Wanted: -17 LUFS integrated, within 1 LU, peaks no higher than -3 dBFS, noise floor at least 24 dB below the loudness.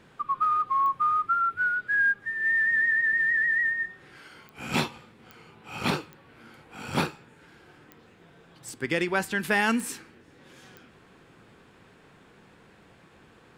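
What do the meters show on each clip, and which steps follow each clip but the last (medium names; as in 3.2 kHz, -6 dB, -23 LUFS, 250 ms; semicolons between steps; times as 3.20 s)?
clicks found 8; loudness -25.0 LUFS; peak level -10.0 dBFS; loudness target -17.0 LUFS
-> de-click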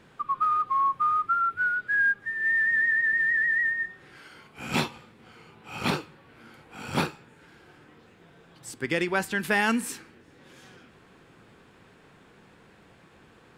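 clicks found 0; loudness -25.0 LUFS; peak level -10.0 dBFS; loudness target -17.0 LUFS
-> trim +8 dB; peak limiter -3 dBFS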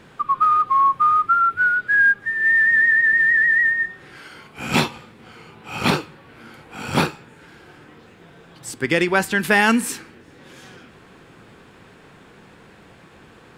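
loudness -17.0 LUFS; peak level -3.0 dBFS; noise floor -48 dBFS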